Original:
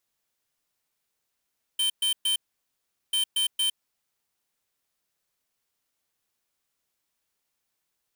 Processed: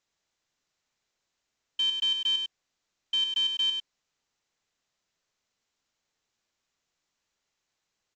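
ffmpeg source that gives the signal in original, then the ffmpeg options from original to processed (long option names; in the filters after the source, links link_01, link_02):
-f lavfi -i "aevalsrc='0.0596*(2*lt(mod(3100*t,1),0.5)-1)*clip(min(mod(mod(t,1.34),0.23),0.11-mod(mod(t,1.34),0.23))/0.005,0,1)*lt(mod(t,1.34),0.69)':duration=2.68:sample_rate=44100"
-af "aecho=1:1:101:0.501" -ar 16000 -c:a sbc -b:a 192k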